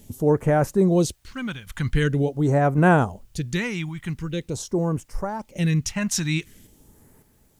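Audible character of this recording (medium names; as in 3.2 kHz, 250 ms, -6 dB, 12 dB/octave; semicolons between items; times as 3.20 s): random-step tremolo 1.8 Hz, depth 75%; phasing stages 2, 0.45 Hz, lowest notch 410–3500 Hz; a quantiser's noise floor 12-bit, dither triangular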